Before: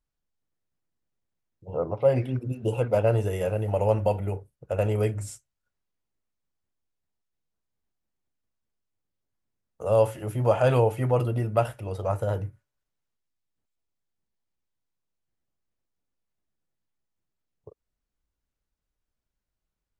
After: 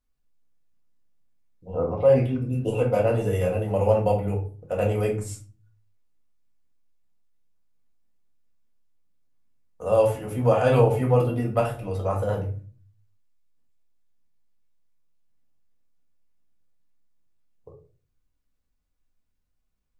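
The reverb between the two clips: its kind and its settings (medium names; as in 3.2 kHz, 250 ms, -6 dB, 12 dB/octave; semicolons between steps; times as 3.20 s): simulated room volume 240 m³, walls furnished, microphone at 1.9 m; trim -1 dB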